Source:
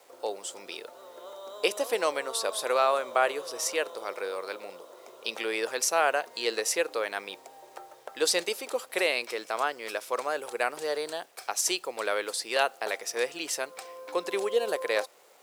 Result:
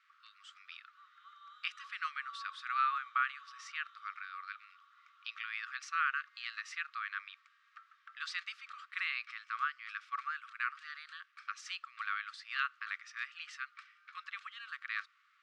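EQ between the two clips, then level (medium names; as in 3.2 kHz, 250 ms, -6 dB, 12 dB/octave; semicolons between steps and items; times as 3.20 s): brick-wall FIR high-pass 1.1 kHz; tape spacing loss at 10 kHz 43 dB; +3.0 dB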